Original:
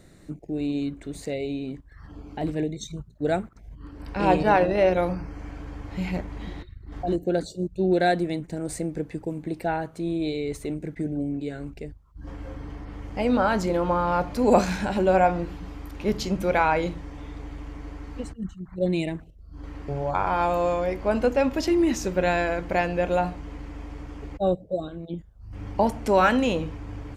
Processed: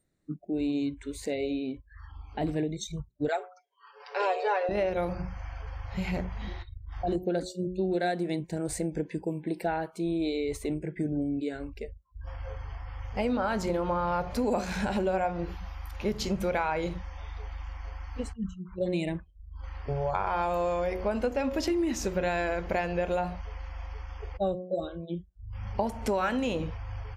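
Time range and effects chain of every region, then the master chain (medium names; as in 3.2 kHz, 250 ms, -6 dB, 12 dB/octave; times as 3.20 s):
3.28–4.69 s: brick-wall FIR band-pass 350–7800 Hz + comb 7 ms, depth 79%
whole clip: de-hum 182.1 Hz, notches 6; spectral noise reduction 25 dB; compression 6:1, threshold -25 dBFS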